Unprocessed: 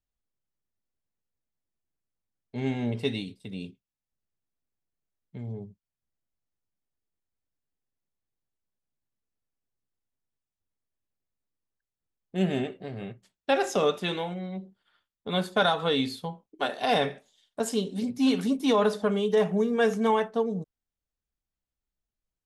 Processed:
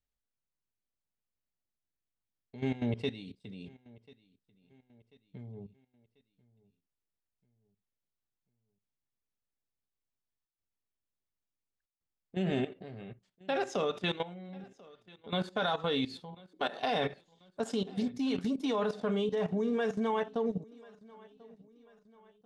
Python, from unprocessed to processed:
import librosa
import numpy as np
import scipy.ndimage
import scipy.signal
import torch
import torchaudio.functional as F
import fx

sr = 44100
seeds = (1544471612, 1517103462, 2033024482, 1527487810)

p1 = scipy.signal.sosfilt(scipy.signal.butter(2, 6200.0, 'lowpass', fs=sr, output='sos'), x)
p2 = fx.level_steps(p1, sr, step_db=15)
y = p2 + fx.echo_feedback(p2, sr, ms=1040, feedback_pct=45, wet_db=-23.5, dry=0)